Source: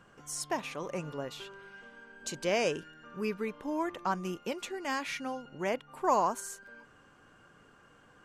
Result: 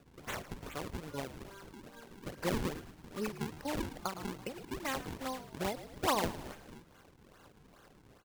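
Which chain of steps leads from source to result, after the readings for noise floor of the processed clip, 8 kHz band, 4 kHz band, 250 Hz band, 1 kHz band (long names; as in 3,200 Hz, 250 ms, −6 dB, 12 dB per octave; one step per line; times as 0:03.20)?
−61 dBFS, −5.0 dB, −1.5 dB, −2.5 dB, −6.0 dB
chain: spectral magnitudes quantised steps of 30 dB
transient designer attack +3 dB, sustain −6 dB
in parallel at +2.5 dB: downward compressor, threshold −39 dBFS, peak gain reduction 16.5 dB
on the sum: sample-and-hold swept by an LFO 41×, swing 160% 2.4 Hz
on a send: echo with shifted repeats 110 ms, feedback 52%, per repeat −64 Hz, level −14 dB
on the sum: every ending faded ahead of time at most 160 dB per second
level −6.5 dB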